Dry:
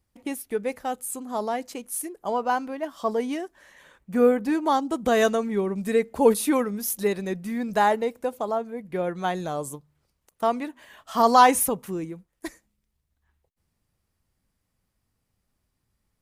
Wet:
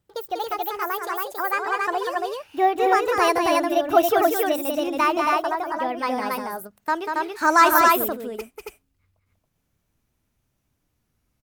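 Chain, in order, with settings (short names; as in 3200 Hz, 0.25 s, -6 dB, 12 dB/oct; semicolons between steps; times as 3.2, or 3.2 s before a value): speed glide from 166% -> 118%; loudspeakers at several distances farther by 66 m -5 dB, 95 m -2 dB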